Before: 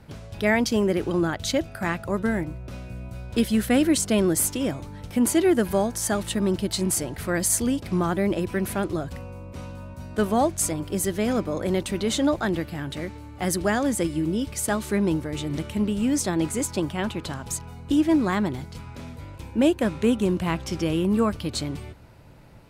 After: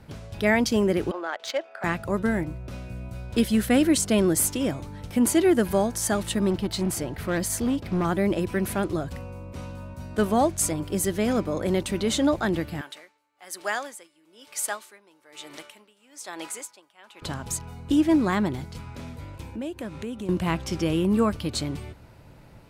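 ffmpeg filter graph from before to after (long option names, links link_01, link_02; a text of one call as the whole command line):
ffmpeg -i in.wav -filter_complex "[0:a]asettb=1/sr,asplit=3[link_01][link_02][link_03];[link_01]atrim=end=1.114[link_04];[link_02]atrim=start=1.11:end=1.84,asetpts=PTS-STARTPTS,afade=type=in:duration=0.004:curve=qsin,afade=type=out:start_time=0.726:duration=0.004:curve=qsin,highpass=frequency=500:width=0.5412,highpass=frequency=500:width=1.3066,bandreject=frequency=4000:width=25,adynamicsmooth=sensitivity=2:basefreq=2700[link_05];[link_03]atrim=start=1.836[link_06];[link_04][link_05]acrossfade=duration=0.004:curve1=hsin:curve2=qsin[link_07];[link_07][link_06]acrossfade=duration=0.004:curve1=qsin:curve2=hsin,asettb=1/sr,asplit=3[link_08][link_09][link_10];[link_08]atrim=end=6.504[link_11];[link_09]atrim=start=6.5:end=8.05,asetpts=PTS-STARTPTS,afade=type=in:duration=0.004:curve=qsin,afade=type=out:start_time=1.546:duration=0.004:curve=qsin,equalizer=frequency=9000:width_type=o:width=1.5:gain=-7.5,asoftclip=type=hard:threshold=-20dB[link_12];[link_10]atrim=start=8.046[link_13];[link_11][link_12]acrossfade=duration=0.004:curve1=hsin:curve2=qsin[link_14];[link_14][link_13]acrossfade=duration=0.004:curve1=qsin:curve2=hsin,asettb=1/sr,asplit=3[link_15][link_16][link_17];[link_15]atrim=end=12.814[link_18];[link_16]atrim=start=12.81:end=17.22,asetpts=PTS-STARTPTS,afade=type=in:duration=0.004:curve=qsin,afade=type=out:start_time=4.406:duration=0.004:curve=qsin,highpass=760,aeval=exprs='val(0)*pow(10,-22*(0.5-0.5*cos(2*PI*1.1*n/s))/20)':channel_layout=same[link_19];[link_17]atrim=start=17.216[link_20];[link_18][link_19]acrossfade=duration=0.004:curve1=hsin:curve2=qsin[link_21];[link_21][link_20]acrossfade=duration=0.004:curve1=qsin:curve2=hsin,asettb=1/sr,asplit=3[link_22][link_23][link_24];[link_22]atrim=end=19.434[link_25];[link_23]atrim=start=19.43:end=20.29,asetpts=PTS-STARTPTS,afade=type=in:duration=0.004:curve=qsin,afade=type=out:start_time=0.856:duration=0.004:curve=qsin,highpass=45,acompressor=threshold=-34dB:ratio=3:attack=3.2:release=140:knee=1:detection=peak[link_26];[link_24]atrim=start=20.286[link_27];[link_25][link_26]acrossfade=duration=0.004:curve1=hsin:curve2=qsin[link_28];[link_28][link_27]acrossfade=duration=0.004:curve1=qsin:curve2=hsin" out.wav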